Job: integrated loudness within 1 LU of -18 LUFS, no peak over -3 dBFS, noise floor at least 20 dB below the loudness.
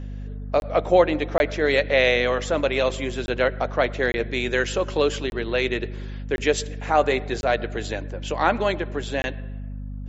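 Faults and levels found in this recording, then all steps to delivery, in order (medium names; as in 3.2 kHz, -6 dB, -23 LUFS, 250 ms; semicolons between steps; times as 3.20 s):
dropouts 8; longest dropout 21 ms; hum 50 Hz; highest harmonic 250 Hz; hum level -30 dBFS; loudness -23.0 LUFS; peak level -5.0 dBFS; loudness target -18.0 LUFS
-> interpolate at 0.60/1.38/3.26/4.12/5.30/6.36/7.41/9.22 s, 21 ms; hum notches 50/100/150/200/250 Hz; trim +5 dB; peak limiter -3 dBFS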